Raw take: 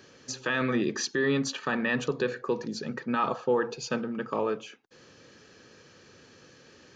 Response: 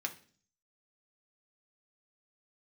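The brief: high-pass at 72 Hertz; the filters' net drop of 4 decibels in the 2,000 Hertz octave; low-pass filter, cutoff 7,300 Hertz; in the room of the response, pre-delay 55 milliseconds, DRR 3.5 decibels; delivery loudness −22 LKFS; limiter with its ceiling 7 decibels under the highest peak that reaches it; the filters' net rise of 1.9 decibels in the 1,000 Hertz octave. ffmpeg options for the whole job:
-filter_complex "[0:a]highpass=72,lowpass=7300,equalizer=frequency=1000:width_type=o:gain=4.5,equalizer=frequency=2000:width_type=o:gain=-6.5,alimiter=limit=-21dB:level=0:latency=1,asplit=2[link_01][link_02];[1:a]atrim=start_sample=2205,adelay=55[link_03];[link_02][link_03]afir=irnorm=-1:irlink=0,volume=-5dB[link_04];[link_01][link_04]amix=inputs=2:normalize=0,volume=9.5dB"

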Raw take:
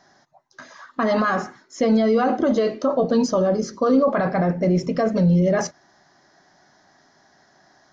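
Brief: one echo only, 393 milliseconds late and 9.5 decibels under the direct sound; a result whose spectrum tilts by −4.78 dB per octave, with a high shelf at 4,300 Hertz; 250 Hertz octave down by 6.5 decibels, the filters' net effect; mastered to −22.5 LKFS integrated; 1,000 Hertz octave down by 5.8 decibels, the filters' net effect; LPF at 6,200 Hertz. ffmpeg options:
ffmpeg -i in.wav -af "lowpass=6200,equalizer=frequency=250:width_type=o:gain=-8.5,equalizer=frequency=1000:width_type=o:gain=-7.5,highshelf=frequency=4300:gain=-4.5,aecho=1:1:393:0.335,volume=2.5dB" out.wav

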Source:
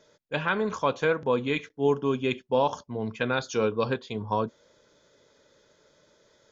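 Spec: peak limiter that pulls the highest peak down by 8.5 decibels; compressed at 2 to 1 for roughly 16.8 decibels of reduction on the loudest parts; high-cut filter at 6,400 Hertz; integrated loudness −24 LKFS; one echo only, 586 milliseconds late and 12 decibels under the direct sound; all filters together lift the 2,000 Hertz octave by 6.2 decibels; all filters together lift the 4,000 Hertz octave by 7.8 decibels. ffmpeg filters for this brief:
ffmpeg -i in.wav -af "lowpass=6400,equalizer=frequency=2000:width_type=o:gain=7,equalizer=frequency=4000:width_type=o:gain=7.5,acompressor=threshold=-50dB:ratio=2,alimiter=level_in=7.5dB:limit=-24dB:level=0:latency=1,volume=-7.5dB,aecho=1:1:586:0.251,volume=20dB" out.wav

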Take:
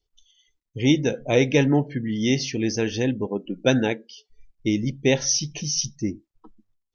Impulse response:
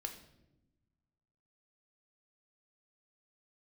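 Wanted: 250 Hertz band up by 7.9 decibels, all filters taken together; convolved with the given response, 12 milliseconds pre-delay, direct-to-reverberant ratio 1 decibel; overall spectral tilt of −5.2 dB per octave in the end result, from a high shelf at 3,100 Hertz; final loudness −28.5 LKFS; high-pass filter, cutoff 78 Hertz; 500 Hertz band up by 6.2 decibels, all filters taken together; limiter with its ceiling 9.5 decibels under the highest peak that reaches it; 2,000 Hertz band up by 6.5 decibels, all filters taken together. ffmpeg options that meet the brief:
-filter_complex "[0:a]highpass=78,equalizer=frequency=250:width_type=o:gain=8,equalizer=frequency=500:width_type=o:gain=4.5,equalizer=frequency=2000:width_type=o:gain=9,highshelf=frequency=3100:gain=-3.5,alimiter=limit=-8dB:level=0:latency=1,asplit=2[link_01][link_02];[1:a]atrim=start_sample=2205,adelay=12[link_03];[link_02][link_03]afir=irnorm=-1:irlink=0,volume=1dB[link_04];[link_01][link_04]amix=inputs=2:normalize=0,volume=-11dB"

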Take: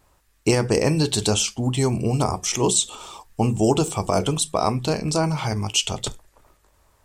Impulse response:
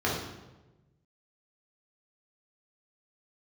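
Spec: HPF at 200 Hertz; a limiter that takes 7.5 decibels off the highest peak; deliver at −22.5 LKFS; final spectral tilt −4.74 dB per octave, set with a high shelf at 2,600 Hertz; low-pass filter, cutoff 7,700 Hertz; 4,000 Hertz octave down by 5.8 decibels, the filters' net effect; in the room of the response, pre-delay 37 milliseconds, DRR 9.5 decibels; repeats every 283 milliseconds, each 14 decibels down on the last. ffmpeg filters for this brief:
-filter_complex "[0:a]highpass=200,lowpass=7700,highshelf=frequency=2600:gain=-4,equalizer=frequency=4000:width_type=o:gain=-4,alimiter=limit=-14dB:level=0:latency=1,aecho=1:1:283|566:0.2|0.0399,asplit=2[link_01][link_02];[1:a]atrim=start_sample=2205,adelay=37[link_03];[link_02][link_03]afir=irnorm=-1:irlink=0,volume=-21.5dB[link_04];[link_01][link_04]amix=inputs=2:normalize=0,volume=3.5dB"

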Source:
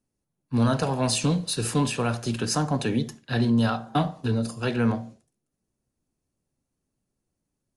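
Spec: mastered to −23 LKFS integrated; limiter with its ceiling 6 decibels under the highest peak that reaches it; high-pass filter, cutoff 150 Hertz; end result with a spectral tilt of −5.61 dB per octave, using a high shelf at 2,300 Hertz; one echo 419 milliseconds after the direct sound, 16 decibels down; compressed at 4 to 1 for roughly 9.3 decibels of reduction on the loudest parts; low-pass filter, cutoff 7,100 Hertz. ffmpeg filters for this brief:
ffmpeg -i in.wav -af "highpass=150,lowpass=7100,highshelf=frequency=2300:gain=-9,acompressor=threshold=-31dB:ratio=4,alimiter=level_in=2dB:limit=-24dB:level=0:latency=1,volume=-2dB,aecho=1:1:419:0.158,volume=13dB" out.wav

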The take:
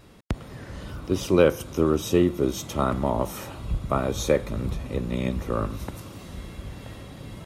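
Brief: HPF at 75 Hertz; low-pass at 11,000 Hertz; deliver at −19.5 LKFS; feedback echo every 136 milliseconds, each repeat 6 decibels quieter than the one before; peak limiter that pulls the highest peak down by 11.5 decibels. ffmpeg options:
ffmpeg -i in.wav -af "highpass=75,lowpass=11000,alimiter=limit=-16dB:level=0:latency=1,aecho=1:1:136|272|408|544|680|816:0.501|0.251|0.125|0.0626|0.0313|0.0157,volume=10dB" out.wav

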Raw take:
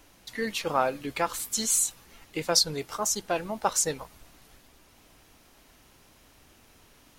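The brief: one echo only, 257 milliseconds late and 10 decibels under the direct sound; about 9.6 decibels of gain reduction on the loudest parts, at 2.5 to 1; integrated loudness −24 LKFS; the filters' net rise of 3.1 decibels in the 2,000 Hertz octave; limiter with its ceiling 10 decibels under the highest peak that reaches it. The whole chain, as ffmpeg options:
ffmpeg -i in.wav -af "equalizer=frequency=2000:width_type=o:gain=4,acompressor=threshold=-32dB:ratio=2.5,alimiter=level_in=2dB:limit=-24dB:level=0:latency=1,volume=-2dB,aecho=1:1:257:0.316,volume=13dB" out.wav

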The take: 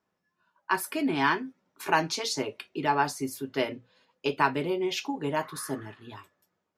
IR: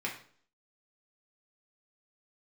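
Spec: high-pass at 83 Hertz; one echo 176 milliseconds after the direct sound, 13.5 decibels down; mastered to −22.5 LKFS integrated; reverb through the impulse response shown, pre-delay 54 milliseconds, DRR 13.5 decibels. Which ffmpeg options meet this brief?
-filter_complex "[0:a]highpass=83,aecho=1:1:176:0.211,asplit=2[link_01][link_02];[1:a]atrim=start_sample=2205,adelay=54[link_03];[link_02][link_03]afir=irnorm=-1:irlink=0,volume=-18dB[link_04];[link_01][link_04]amix=inputs=2:normalize=0,volume=6.5dB"

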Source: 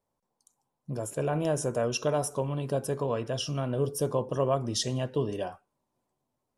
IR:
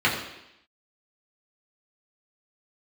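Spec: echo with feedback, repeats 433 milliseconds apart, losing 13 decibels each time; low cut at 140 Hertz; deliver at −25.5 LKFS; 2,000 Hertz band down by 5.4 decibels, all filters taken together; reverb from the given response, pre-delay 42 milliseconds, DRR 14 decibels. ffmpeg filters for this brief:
-filter_complex "[0:a]highpass=140,equalizer=frequency=2000:width_type=o:gain=-8.5,aecho=1:1:433|866|1299:0.224|0.0493|0.0108,asplit=2[link_01][link_02];[1:a]atrim=start_sample=2205,adelay=42[link_03];[link_02][link_03]afir=irnorm=-1:irlink=0,volume=-31dB[link_04];[link_01][link_04]amix=inputs=2:normalize=0,volume=5.5dB"

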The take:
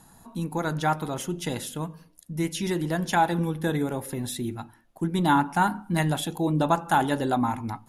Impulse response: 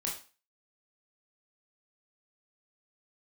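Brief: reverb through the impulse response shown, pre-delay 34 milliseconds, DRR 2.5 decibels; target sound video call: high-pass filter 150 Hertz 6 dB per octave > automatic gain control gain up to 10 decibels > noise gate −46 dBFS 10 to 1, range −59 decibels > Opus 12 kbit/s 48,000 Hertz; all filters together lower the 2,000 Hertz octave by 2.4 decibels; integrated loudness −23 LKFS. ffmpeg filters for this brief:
-filter_complex "[0:a]equalizer=frequency=2000:width_type=o:gain=-3.5,asplit=2[link_01][link_02];[1:a]atrim=start_sample=2205,adelay=34[link_03];[link_02][link_03]afir=irnorm=-1:irlink=0,volume=-5dB[link_04];[link_01][link_04]amix=inputs=2:normalize=0,highpass=frequency=150:poles=1,dynaudnorm=maxgain=10dB,agate=range=-59dB:threshold=-46dB:ratio=10,volume=3.5dB" -ar 48000 -c:a libopus -b:a 12k

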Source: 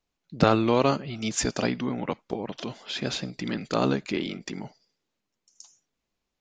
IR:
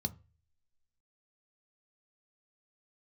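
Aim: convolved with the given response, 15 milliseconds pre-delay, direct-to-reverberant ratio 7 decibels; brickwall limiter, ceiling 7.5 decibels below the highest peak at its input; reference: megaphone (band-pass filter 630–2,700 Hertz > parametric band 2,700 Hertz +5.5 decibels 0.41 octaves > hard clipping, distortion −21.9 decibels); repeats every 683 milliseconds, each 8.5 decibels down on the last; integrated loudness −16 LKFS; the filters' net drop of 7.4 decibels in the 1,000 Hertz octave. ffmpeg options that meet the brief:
-filter_complex "[0:a]equalizer=frequency=1000:width_type=o:gain=-9,alimiter=limit=-15.5dB:level=0:latency=1,aecho=1:1:683|1366|2049|2732:0.376|0.143|0.0543|0.0206,asplit=2[link_01][link_02];[1:a]atrim=start_sample=2205,adelay=15[link_03];[link_02][link_03]afir=irnorm=-1:irlink=0,volume=-7dB[link_04];[link_01][link_04]amix=inputs=2:normalize=0,highpass=630,lowpass=2700,equalizer=frequency=2700:width_type=o:width=0.41:gain=5.5,asoftclip=type=hard:threshold=-24dB,volume=20.5dB"

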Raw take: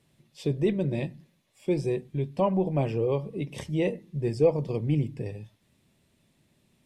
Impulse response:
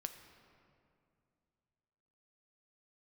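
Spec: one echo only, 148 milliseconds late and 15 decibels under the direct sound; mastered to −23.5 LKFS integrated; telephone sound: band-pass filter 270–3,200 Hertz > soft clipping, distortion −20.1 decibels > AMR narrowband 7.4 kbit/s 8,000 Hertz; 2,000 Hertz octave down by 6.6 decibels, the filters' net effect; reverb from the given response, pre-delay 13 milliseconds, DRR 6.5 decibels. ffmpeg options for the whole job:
-filter_complex "[0:a]equalizer=frequency=2000:width_type=o:gain=-7,aecho=1:1:148:0.178,asplit=2[link_01][link_02];[1:a]atrim=start_sample=2205,adelay=13[link_03];[link_02][link_03]afir=irnorm=-1:irlink=0,volume=-4dB[link_04];[link_01][link_04]amix=inputs=2:normalize=0,highpass=270,lowpass=3200,asoftclip=threshold=-15dB,volume=8dB" -ar 8000 -c:a libopencore_amrnb -b:a 7400

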